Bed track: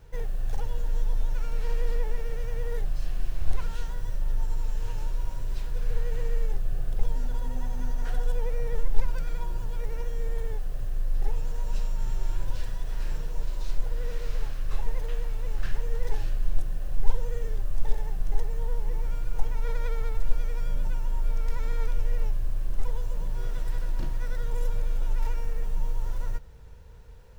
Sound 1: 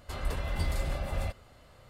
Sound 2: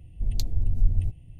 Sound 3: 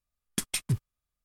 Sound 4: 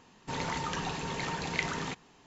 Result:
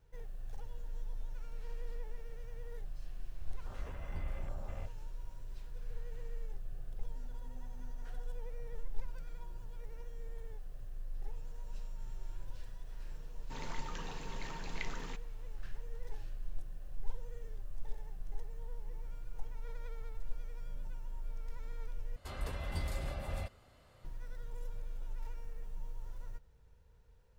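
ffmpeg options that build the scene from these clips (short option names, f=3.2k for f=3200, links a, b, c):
-filter_complex "[1:a]asplit=2[a][b];[0:a]volume=-15.5dB[c];[a]afwtdn=0.00794[d];[4:a]bandreject=f=760:w=22[e];[c]asplit=2[f][g];[f]atrim=end=22.164[h];[b]atrim=end=1.89,asetpts=PTS-STARTPTS,volume=-6.5dB[i];[g]atrim=start=24.046[j];[d]atrim=end=1.89,asetpts=PTS-STARTPTS,volume=-12dB,afade=t=in:d=0.004:c=hsin,afade=t=out:st=1.886:d=0.004:c=hsin,adelay=3560[k];[e]atrim=end=2.26,asetpts=PTS-STARTPTS,volume=-11.5dB,afade=t=in:d=0.004:c=hsin,afade=t=out:st=2.256:d=0.004:c=hsin,adelay=13220[l];[h][i]acrossfade=d=0.004:c1=hsin:c2=hsin[m];[m][j]acrossfade=d=0.004:c1=hsin:c2=hsin[n];[n][k][l]amix=inputs=3:normalize=0"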